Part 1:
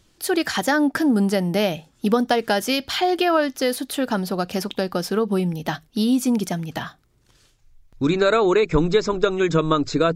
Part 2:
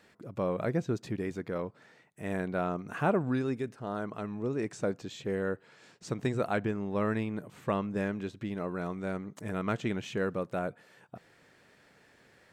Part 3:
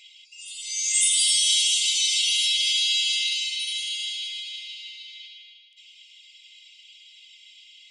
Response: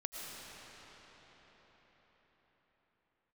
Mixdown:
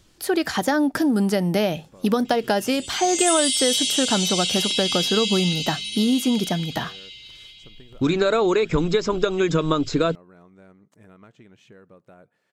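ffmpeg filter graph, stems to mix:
-filter_complex "[0:a]acrossover=split=1200|2600[a][b][c];[a]acompressor=threshold=-19dB:ratio=4[d];[b]acompressor=threshold=-36dB:ratio=4[e];[c]acompressor=threshold=-33dB:ratio=4[f];[d][e][f]amix=inputs=3:normalize=0,volume=2dB[g];[1:a]acompressor=threshold=-32dB:ratio=6,adelay=1550,volume=-13dB[h];[2:a]adelay=2250,volume=-2dB[i];[g][h][i]amix=inputs=3:normalize=0"

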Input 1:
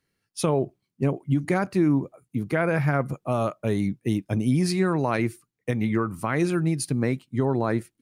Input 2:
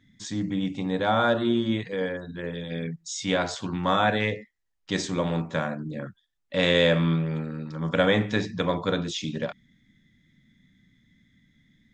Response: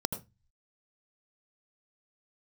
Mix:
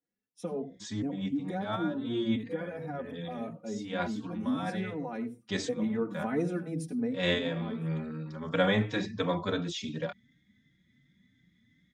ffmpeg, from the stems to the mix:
-filter_complex "[0:a]equalizer=f=380:w=0.45:g=5.5,aecho=1:1:4.1:0.68,volume=-14dB,afade=t=in:st=5.46:d=0.45:silence=0.446684,afade=t=out:st=6.76:d=0.45:silence=0.316228,asplit=3[a][b][c];[b]volume=-8.5dB[d];[1:a]highpass=58,adelay=600,volume=-1.5dB[e];[c]apad=whole_len=553009[f];[e][f]sidechaincompress=threshold=-50dB:ratio=5:attack=30:release=141[g];[2:a]atrim=start_sample=2205[h];[d][h]afir=irnorm=-1:irlink=0[i];[a][g][i]amix=inputs=3:normalize=0,highshelf=f=8.1k:g=-5,asplit=2[j][k];[k]adelay=3.9,afreqshift=2.8[l];[j][l]amix=inputs=2:normalize=1"

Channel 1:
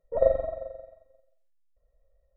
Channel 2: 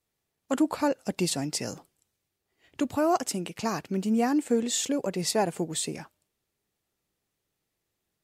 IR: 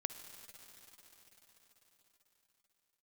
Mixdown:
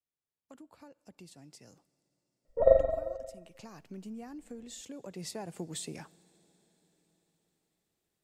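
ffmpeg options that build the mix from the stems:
-filter_complex "[0:a]adelay=2450,volume=0.5dB[a];[1:a]acrossover=split=140[b][c];[c]acompressor=threshold=-33dB:ratio=6[d];[b][d]amix=inputs=2:normalize=0,volume=-5.5dB,afade=t=in:st=3.46:d=0.42:silence=0.421697,afade=t=in:st=4.86:d=0.73:silence=0.446684,asplit=2[e][f];[f]volume=-12dB[g];[2:a]atrim=start_sample=2205[h];[g][h]afir=irnorm=-1:irlink=0[i];[a][e][i]amix=inputs=3:normalize=0"

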